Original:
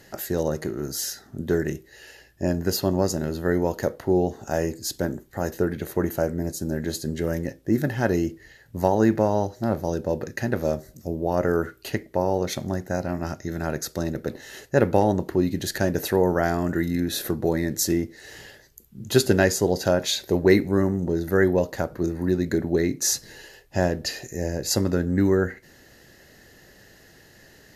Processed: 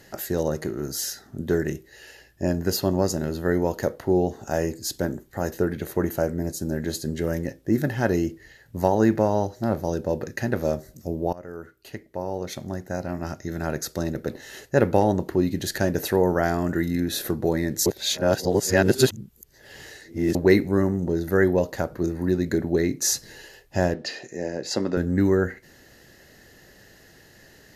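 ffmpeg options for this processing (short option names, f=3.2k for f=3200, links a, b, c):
-filter_complex "[0:a]asettb=1/sr,asplit=3[a][b][c];[a]atrim=end=23.944[d];[b]atrim=start=23.94:end=24.97,asetpts=PTS-STARTPTS,afade=t=in:d=0.004:c=qsin,afade=t=out:st=1.026:d=0.004:c=qsin,highpass=210,lowpass=4.7k[e];[c]atrim=start=24.966[f];[d][e]acrossfade=d=0.004:c1=hsin:c2=qsin[g];[g][f]acrossfade=d=0.004:c1=qsin:c2=hsin,asplit=4[h][i][j][k];[h]atrim=end=11.33,asetpts=PTS-STARTPTS,afade=t=out:st=11.326:d=0.004:c=hsin:silence=0.1[l];[i]atrim=start=11.33:end=17.862,asetpts=PTS-STARTPTS,afade=t=in:d=2.39:silence=0.1[m];[j]atrim=start=17.858:end=20.352,asetpts=PTS-STARTPTS,areverse[n];[k]atrim=start=20.348[o];[l][m]concat=n=2:v=0:a=1[p];[p][n]acrossfade=d=0.004:c1=hsin:c2=hsin[q];[q][o]acrossfade=d=0.004:c1=hsin:c2=hsin"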